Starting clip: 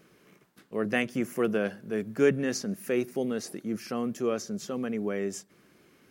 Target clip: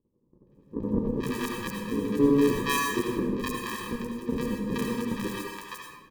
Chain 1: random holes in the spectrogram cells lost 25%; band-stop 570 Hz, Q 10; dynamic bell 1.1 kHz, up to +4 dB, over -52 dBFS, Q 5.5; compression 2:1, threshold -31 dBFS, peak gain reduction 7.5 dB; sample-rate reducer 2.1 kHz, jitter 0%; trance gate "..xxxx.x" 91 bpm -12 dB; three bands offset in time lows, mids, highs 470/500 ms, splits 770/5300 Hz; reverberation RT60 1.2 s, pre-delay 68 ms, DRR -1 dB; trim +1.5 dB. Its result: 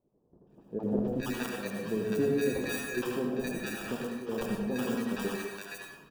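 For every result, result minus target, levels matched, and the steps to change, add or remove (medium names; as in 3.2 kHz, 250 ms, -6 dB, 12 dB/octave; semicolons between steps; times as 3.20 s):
sample-rate reducer: distortion -17 dB; compression: peak gain reduction +7.5 dB
change: sample-rate reducer 710 Hz, jitter 0%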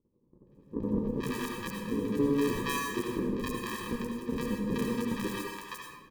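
compression: peak gain reduction +7.5 dB
remove: compression 2:1, threshold -31 dBFS, peak gain reduction 7.5 dB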